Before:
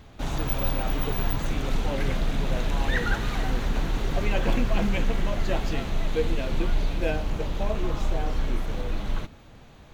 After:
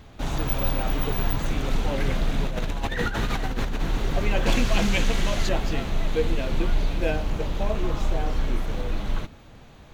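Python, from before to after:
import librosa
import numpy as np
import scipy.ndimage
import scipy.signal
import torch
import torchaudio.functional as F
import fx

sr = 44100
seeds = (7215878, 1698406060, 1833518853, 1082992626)

y = fx.over_compress(x, sr, threshold_db=-27.0, ratio=-1.0, at=(2.47, 3.81))
y = fx.peak_eq(y, sr, hz=6600.0, db=10.5, octaves=2.7, at=(4.46, 5.49))
y = F.gain(torch.from_numpy(y), 1.5).numpy()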